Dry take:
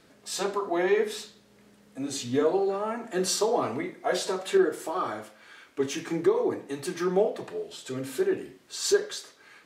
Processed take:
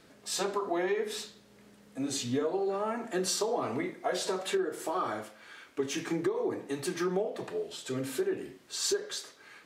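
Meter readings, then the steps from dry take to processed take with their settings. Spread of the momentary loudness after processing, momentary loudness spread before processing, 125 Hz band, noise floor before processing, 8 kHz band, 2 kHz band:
9 LU, 13 LU, −2.5 dB, −59 dBFS, −2.0 dB, −4.0 dB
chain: downward compressor 6 to 1, threshold −27 dBFS, peak gain reduction 10 dB

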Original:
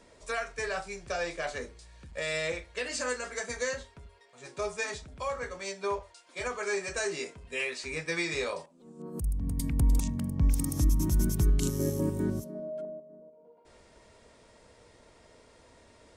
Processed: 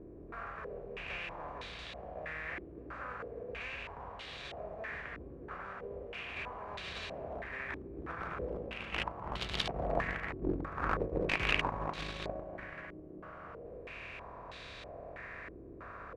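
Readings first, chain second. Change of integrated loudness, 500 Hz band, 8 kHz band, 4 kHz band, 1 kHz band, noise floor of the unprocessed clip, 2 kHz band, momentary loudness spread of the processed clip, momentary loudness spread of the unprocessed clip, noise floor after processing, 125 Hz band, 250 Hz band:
−7.5 dB, −6.0 dB, −21.5 dB, −1.0 dB, 0.0 dB, −59 dBFS, −3.0 dB, 13 LU, 14 LU, −50 dBFS, −12.5 dB, −9.0 dB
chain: compressor on every frequency bin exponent 0.2
noise gate −14 dBFS, range −42 dB
in parallel at −2 dB: downward compressor 10 to 1, threshold −56 dBFS, peak gain reduction 18 dB
on the sum: wrap-around overflow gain 36 dB
low-shelf EQ 360 Hz −9.5 dB
slap from a distant wall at 57 metres, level −9 dB
delay with pitch and tempo change per echo 159 ms, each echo +3 semitones, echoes 3, each echo −6 dB
low-shelf EQ 150 Hz +3 dB
low-pass on a step sequencer 3.1 Hz 340–3,700 Hz
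level +14 dB

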